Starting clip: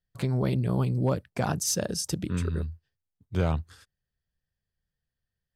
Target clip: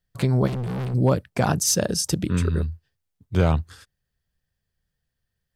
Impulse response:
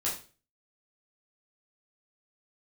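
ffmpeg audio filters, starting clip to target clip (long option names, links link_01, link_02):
-filter_complex "[0:a]asplit=3[link_01][link_02][link_03];[link_01]afade=type=out:start_time=0.46:duration=0.02[link_04];[link_02]asoftclip=type=hard:threshold=-32.5dB,afade=type=in:start_time=0.46:duration=0.02,afade=type=out:start_time=0.93:duration=0.02[link_05];[link_03]afade=type=in:start_time=0.93:duration=0.02[link_06];[link_04][link_05][link_06]amix=inputs=3:normalize=0,volume=6.5dB"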